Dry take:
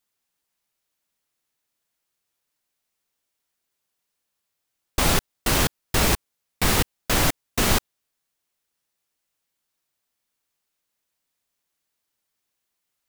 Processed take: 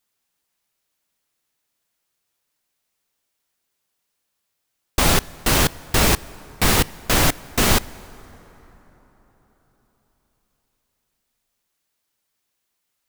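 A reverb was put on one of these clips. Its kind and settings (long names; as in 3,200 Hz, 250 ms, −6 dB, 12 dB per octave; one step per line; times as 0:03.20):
dense smooth reverb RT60 4.5 s, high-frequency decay 0.5×, DRR 19.5 dB
level +3.5 dB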